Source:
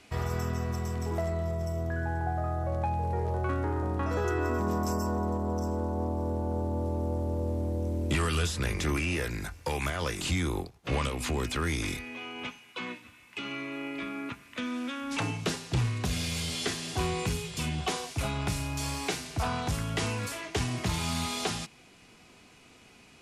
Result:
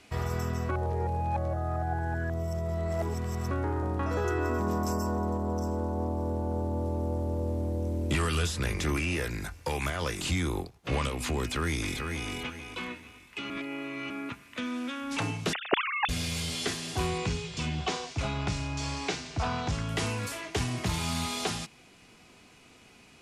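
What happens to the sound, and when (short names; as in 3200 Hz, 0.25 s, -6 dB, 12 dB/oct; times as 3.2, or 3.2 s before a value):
0.69–3.51 reverse
11.51–12.3 echo throw 0.44 s, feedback 30%, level -5 dB
13.5–14.1 reverse
15.53–16.09 sine-wave speech
17.18–19.89 LPF 7000 Hz 24 dB/oct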